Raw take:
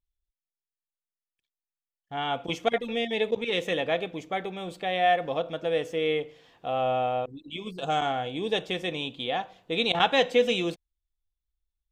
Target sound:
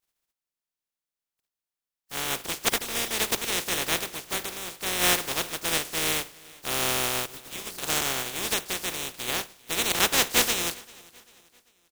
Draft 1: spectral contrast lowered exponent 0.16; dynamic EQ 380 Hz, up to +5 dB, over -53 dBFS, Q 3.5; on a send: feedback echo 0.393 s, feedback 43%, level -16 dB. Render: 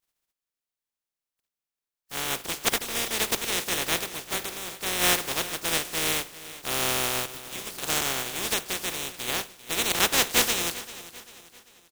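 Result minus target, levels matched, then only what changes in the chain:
echo-to-direct +7.5 dB
change: feedback echo 0.393 s, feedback 43%, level -23.5 dB

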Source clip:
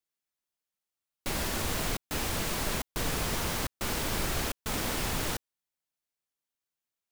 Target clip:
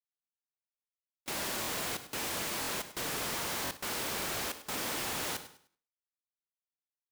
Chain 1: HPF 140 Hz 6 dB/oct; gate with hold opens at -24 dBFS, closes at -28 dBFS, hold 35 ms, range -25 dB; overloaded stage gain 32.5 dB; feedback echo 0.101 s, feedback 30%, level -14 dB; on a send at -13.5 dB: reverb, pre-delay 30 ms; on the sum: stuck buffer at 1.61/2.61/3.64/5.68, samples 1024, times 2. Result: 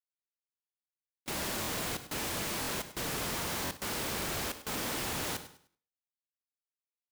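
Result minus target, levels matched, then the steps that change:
125 Hz band +5.5 dB
change: HPF 370 Hz 6 dB/oct

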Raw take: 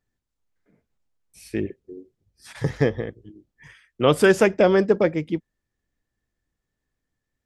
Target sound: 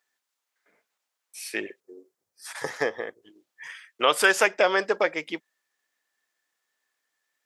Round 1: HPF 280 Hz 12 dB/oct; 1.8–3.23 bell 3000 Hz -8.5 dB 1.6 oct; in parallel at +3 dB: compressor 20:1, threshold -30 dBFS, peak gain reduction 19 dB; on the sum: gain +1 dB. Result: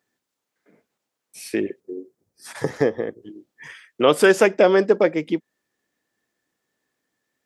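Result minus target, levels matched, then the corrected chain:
250 Hz band +8.5 dB
HPF 890 Hz 12 dB/oct; 1.8–3.23 bell 3000 Hz -8.5 dB 1.6 oct; in parallel at +3 dB: compressor 20:1, threshold -30 dBFS, peak gain reduction 13 dB; on the sum: gain +1 dB

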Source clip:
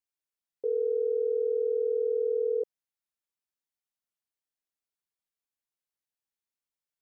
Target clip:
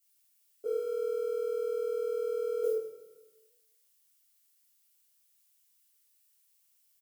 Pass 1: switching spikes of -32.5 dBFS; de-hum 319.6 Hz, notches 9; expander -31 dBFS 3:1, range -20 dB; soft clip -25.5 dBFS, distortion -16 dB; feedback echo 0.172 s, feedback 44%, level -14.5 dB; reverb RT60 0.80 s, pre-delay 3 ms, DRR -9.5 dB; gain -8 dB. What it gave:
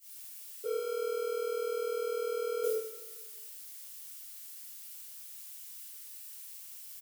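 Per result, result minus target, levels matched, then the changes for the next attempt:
switching spikes: distortion +11 dB; soft clip: distortion +10 dB
change: switching spikes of -43.5 dBFS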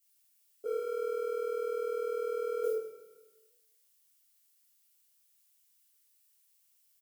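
soft clip: distortion +9 dB
change: soft clip -19.5 dBFS, distortion -26 dB

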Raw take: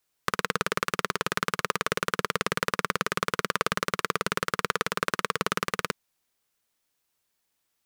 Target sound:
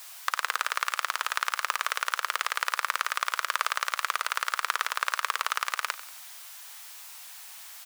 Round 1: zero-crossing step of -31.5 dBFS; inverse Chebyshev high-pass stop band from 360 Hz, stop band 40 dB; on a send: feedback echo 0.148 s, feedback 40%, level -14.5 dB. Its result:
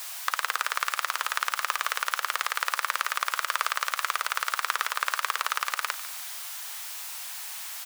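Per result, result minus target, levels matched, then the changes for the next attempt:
echo 55 ms late; zero-crossing step: distortion +7 dB
change: feedback echo 93 ms, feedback 40%, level -14.5 dB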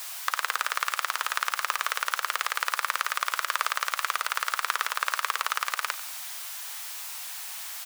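zero-crossing step: distortion +7 dB
change: zero-crossing step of -39 dBFS

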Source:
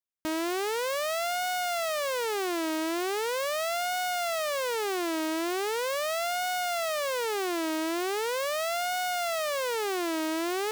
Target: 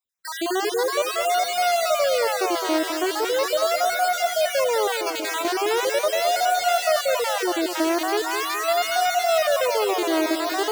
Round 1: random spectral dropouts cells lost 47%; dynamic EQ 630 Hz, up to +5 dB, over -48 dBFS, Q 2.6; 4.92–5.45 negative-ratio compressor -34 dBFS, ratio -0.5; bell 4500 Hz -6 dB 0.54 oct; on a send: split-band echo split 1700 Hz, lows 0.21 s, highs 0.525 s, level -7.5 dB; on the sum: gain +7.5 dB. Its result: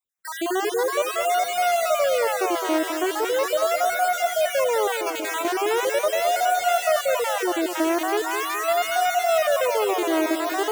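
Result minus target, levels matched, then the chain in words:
4000 Hz band -3.5 dB
random spectral dropouts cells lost 47%; dynamic EQ 630 Hz, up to +5 dB, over -48 dBFS, Q 2.6; 4.92–5.45 negative-ratio compressor -34 dBFS, ratio -0.5; bell 4500 Hz +3 dB 0.54 oct; on a send: split-band echo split 1700 Hz, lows 0.21 s, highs 0.525 s, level -7.5 dB; on the sum: gain +7.5 dB

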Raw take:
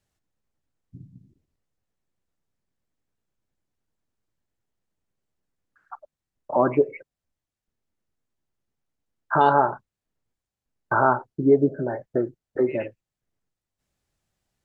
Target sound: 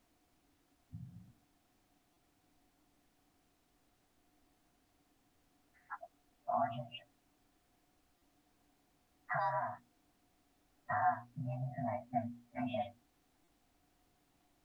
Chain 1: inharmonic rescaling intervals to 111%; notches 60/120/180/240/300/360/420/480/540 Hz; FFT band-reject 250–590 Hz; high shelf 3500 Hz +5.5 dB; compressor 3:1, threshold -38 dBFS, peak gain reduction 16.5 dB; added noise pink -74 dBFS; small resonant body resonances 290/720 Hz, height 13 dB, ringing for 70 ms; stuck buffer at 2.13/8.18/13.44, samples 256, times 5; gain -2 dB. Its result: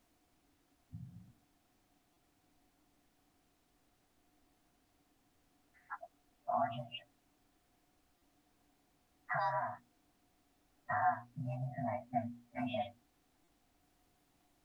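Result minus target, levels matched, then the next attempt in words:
4000 Hz band +3.5 dB
inharmonic rescaling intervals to 111%; notches 60/120/180/240/300/360/420/480/540 Hz; FFT band-reject 250–590 Hz; high shelf 3500 Hz -3.5 dB; compressor 3:1, threshold -38 dBFS, peak gain reduction 16 dB; added noise pink -74 dBFS; small resonant body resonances 290/720 Hz, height 13 dB, ringing for 70 ms; stuck buffer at 2.13/8.18/13.44, samples 256, times 5; gain -2 dB

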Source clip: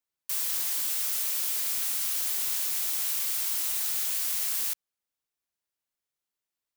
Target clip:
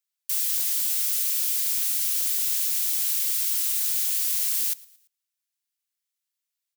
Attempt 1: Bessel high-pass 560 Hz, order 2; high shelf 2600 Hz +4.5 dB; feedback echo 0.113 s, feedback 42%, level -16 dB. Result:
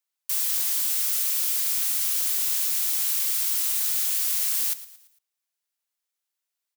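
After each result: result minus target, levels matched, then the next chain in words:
500 Hz band +14.5 dB; echo-to-direct +7 dB
Bessel high-pass 1900 Hz, order 2; high shelf 2600 Hz +4.5 dB; feedback echo 0.113 s, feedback 42%, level -16 dB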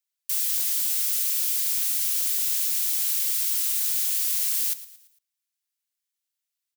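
echo-to-direct +7 dB
Bessel high-pass 1900 Hz, order 2; high shelf 2600 Hz +4.5 dB; feedback echo 0.113 s, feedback 42%, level -23 dB

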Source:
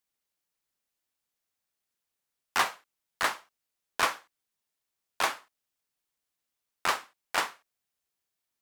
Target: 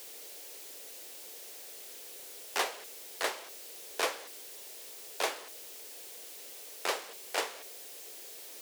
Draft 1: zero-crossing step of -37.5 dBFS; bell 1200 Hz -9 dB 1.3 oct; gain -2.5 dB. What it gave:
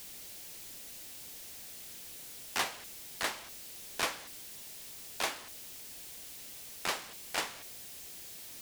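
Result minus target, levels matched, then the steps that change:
500 Hz band -5.5 dB
add after zero-crossing step: resonant high-pass 440 Hz, resonance Q 2.7

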